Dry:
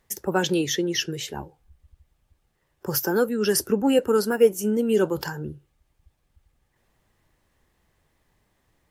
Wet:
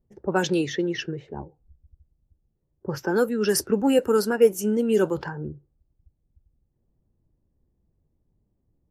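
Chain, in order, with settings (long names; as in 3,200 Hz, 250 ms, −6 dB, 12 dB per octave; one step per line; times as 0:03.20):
dynamic equaliser 3,200 Hz, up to −6 dB, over −48 dBFS, Q 6.7
low-pass that shuts in the quiet parts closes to 310 Hz, open at −17 dBFS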